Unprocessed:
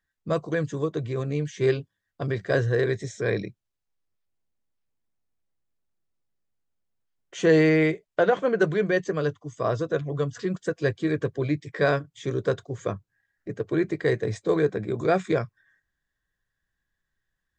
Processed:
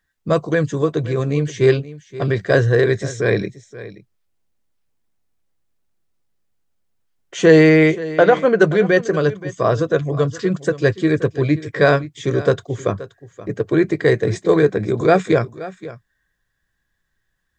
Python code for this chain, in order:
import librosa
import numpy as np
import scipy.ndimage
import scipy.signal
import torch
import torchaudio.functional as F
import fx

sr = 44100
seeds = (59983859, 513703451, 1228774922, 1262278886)

y = x + 10.0 ** (-16.5 / 20.0) * np.pad(x, (int(526 * sr / 1000.0), 0))[:len(x)]
y = F.gain(torch.from_numpy(y), 8.5).numpy()